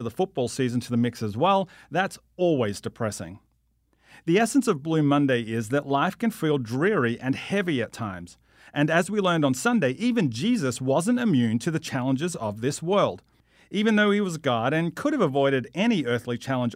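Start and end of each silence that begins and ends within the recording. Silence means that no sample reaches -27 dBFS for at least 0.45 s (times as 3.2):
3.24–4.28
8.18–8.76
13.13–13.74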